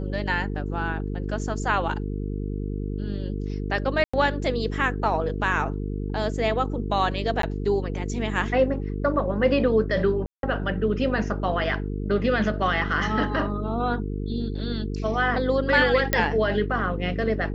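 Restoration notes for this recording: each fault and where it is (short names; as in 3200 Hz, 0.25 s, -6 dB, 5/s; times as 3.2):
buzz 50 Hz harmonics 9 -29 dBFS
4.04–4.13 gap 95 ms
7.42–7.43 gap 13 ms
10.26–10.43 gap 0.172 s
16.13 pop -5 dBFS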